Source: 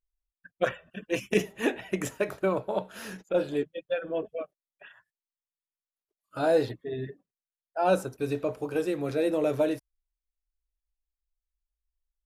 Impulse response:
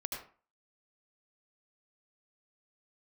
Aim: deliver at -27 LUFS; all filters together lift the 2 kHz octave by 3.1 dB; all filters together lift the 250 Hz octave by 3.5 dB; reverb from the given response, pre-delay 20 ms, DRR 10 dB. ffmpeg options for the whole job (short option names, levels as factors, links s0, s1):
-filter_complex "[0:a]equalizer=f=250:t=o:g=5,equalizer=f=2000:t=o:g=4,asplit=2[s0][s1];[1:a]atrim=start_sample=2205,adelay=20[s2];[s1][s2]afir=irnorm=-1:irlink=0,volume=0.282[s3];[s0][s3]amix=inputs=2:normalize=0,volume=1.06"